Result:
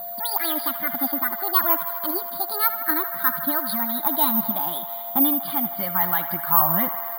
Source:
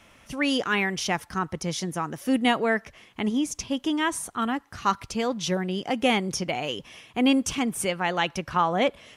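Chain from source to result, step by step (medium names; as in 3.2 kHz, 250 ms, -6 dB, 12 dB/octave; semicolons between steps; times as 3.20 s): gliding tape speed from 168% -> 87%; treble shelf 3.2 kHz +8 dB; FFT band-pass 150–4900 Hz; in parallel at +3 dB: peak limiter -19.5 dBFS, peak gain reduction 12.5 dB; on the sum: static phaser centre 1.1 kHz, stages 4; phaser 0.58 Hz, delay 4.9 ms, feedback 41%; whistle 690 Hz -31 dBFS; distance through air 140 m; on a send: feedback echo behind a band-pass 79 ms, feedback 82%, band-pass 1.5 kHz, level -11 dB; on the sum: careless resampling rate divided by 3×, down none, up zero stuff; trim -3.5 dB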